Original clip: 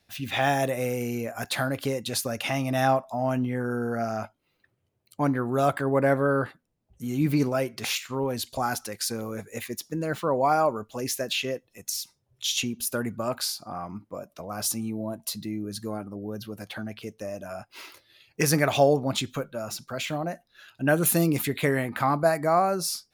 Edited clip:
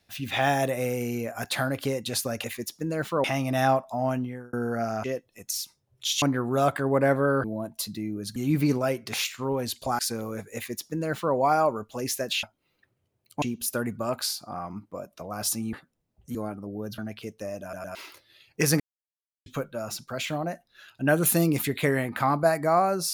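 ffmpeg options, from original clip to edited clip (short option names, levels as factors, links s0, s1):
-filter_complex "[0:a]asplit=19[s0][s1][s2][s3][s4][s5][s6][s7][s8][s9][s10][s11][s12][s13][s14][s15][s16][s17][s18];[s0]atrim=end=2.442[s19];[s1]atrim=start=9.548:end=10.352[s20];[s2]atrim=start=2.438:end=3.73,asetpts=PTS-STARTPTS,afade=t=out:st=0.832:d=0.46[s21];[s3]atrim=start=3.73:end=4.242,asetpts=PTS-STARTPTS,afade=t=in:d=0.004:c=hsin[s22];[s4]atrim=start=11.428:end=12.612[s23];[s5]atrim=start=5.228:end=6.452[s24];[s6]atrim=start=14.918:end=15.842[s25];[s7]atrim=start=7.068:end=8.702[s26];[s8]atrim=start=8.988:end=11.432[s27];[s9]atrim=start=4.238:end=5.232[s28];[s10]atrim=start=12.608:end=14.922[s29];[s11]atrim=start=6.448:end=7.072[s30];[s12]atrim=start=15.838:end=16.472[s31];[s13]atrim=start=16.778:end=17.532[s32];[s14]atrim=start=17.418:end=17.532[s33];[s15]atrim=start=17.418:end=17.532[s34];[s16]atrim=start=17.748:end=18.6,asetpts=PTS-STARTPTS,afade=t=out:st=0.848:d=0.004:c=hsin[s35];[s17]atrim=start=18.6:end=19.26,asetpts=PTS-STARTPTS,volume=0[s36];[s18]atrim=start=19.26,asetpts=PTS-STARTPTS,afade=t=in:d=0.004:c=hsin[s37];[s19][s20]acrossfade=d=0.004:c1=hsin:c2=hsin[s38];[s21][s22]concat=n=2:v=0:a=1[s39];[s38][s39]acrossfade=d=0.004:c1=hsin:c2=hsin[s40];[s40][s23]acrossfade=d=0.004:c1=hsin:c2=hsin[s41];[s41][s24]acrossfade=d=0.004:c1=hsin:c2=hsin[s42];[s42][s25]acrossfade=d=0.004:c1=hsin:c2=hsin[s43];[s43][s26]acrossfade=d=0.004:c1=hsin:c2=hsin[s44];[s44][s27]acrossfade=d=0.004:c1=hsin:c2=hsin[s45];[s45][s28]acrossfade=d=0.004:c1=hsin:c2=hsin[s46];[s46][s29]acrossfade=d=0.004:c1=hsin:c2=hsin[s47];[s47][s30]acrossfade=d=0.004:c1=hsin:c2=hsin[s48];[s48][s31]acrossfade=d=0.004:c1=hsin:c2=hsin[s49];[s49][s32]acrossfade=d=0.004:c1=hsin:c2=hsin[s50];[s50][s33]acrossfade=d=0.004:c1=hsin:c2=hsin[s51];[s51][s34]acrossfade=d=0.004:c1=hsin:c2=hsin[s52];[s35][s36][s37]concat=n=3:v=0:a=1[s53];[s52][s53]acrossfade=d=0.004:c1=hsin:c2=hsin"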